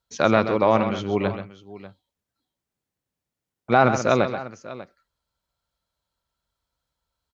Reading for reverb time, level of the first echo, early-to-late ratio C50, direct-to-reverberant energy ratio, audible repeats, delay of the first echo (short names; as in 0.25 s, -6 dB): none, -10.0 dB, none, none, 2, 0.132 s